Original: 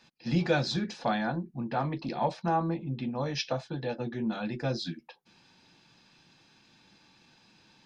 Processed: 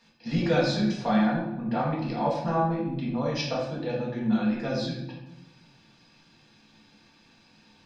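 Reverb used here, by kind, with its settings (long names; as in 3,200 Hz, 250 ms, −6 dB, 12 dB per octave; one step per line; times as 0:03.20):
rectangular room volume 320 cubic metres, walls mixed, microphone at 1.7 metres
level −2.5 dB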